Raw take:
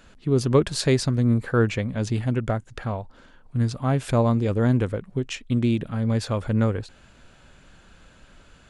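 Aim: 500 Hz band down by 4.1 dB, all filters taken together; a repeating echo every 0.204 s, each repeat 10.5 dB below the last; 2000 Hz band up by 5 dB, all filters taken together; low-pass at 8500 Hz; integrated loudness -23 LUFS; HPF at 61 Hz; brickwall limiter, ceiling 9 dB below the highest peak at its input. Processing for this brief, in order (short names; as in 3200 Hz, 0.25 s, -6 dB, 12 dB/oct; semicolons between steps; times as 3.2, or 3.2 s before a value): HPF 61 Hz; LPF 8500 Hz; bell 500 Hz -5.5 dB; bell 2000 Hz +7 dB; limiter -17.5 dBFS; feedback echo 0.204 s, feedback 30%, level -10.5 dB; gain +4 dB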